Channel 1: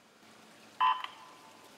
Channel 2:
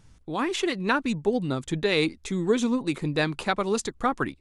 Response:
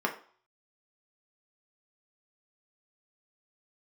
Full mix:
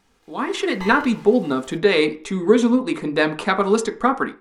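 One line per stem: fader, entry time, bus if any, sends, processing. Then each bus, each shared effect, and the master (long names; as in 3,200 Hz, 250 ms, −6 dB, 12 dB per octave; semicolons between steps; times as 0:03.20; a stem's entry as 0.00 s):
−3.5 dB, 0.00 s, no send, lower of the sound and its delayed copy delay 2.4 ms; brickwall limiter −28 dBFS, peak gain reduction 8 dB
−10.0 dB, 0.00 s, send −5 dB, no processing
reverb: on, RT60 0.45 s, pre-delay 3 ms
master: automatic gain control gain up to 11 dB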